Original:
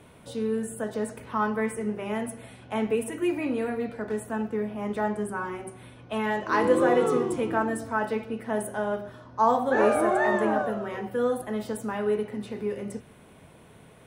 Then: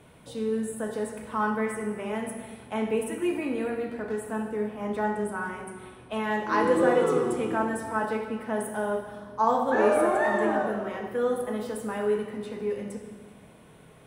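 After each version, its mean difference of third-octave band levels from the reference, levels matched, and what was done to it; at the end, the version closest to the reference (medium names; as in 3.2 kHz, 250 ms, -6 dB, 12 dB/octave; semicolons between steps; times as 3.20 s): 2.5 dB: plate-style reverb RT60 1.6 s, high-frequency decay 0.85×, DRR 4.5 dB; trim -2 dB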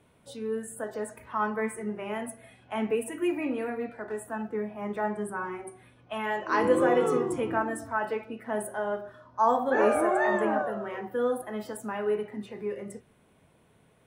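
4.0 dB: spectral noise reduction 9 dB; trim -1.5 dB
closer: first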